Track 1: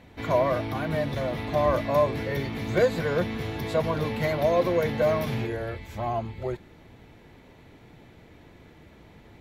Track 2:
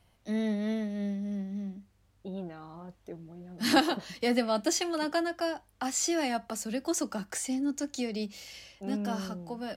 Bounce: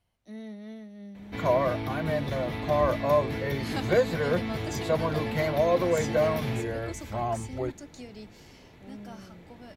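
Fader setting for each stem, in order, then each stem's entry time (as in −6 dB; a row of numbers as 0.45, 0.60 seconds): −1.0, −11.0 decibels; 1.15, 0.00 seconds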